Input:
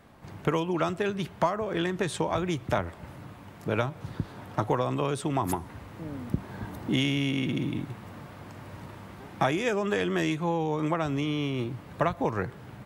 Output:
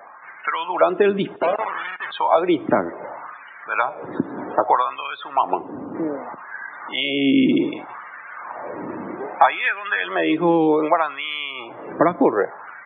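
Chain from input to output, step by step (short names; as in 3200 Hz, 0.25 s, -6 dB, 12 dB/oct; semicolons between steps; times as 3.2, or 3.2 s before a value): 5.25–5.95 median filter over 25 samples; HPF 75 Hz 12 dB/oct; in parallel at +2.5 dB: compressor 16:1, threshold -37 dBFS, peak gain reduction 18.5 dB; 1.36–2.12 on the sum: Schmitt trigger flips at -27 dBFS; loudest bins only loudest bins 64; downsampling 8000 Hz; on a send at -21 dB: reverb RT60 1.3 s, pre-delay 6 ms; on the sum: LFO high-pass sine 0.64 Hz 270–1700 Hz; gain +6 dB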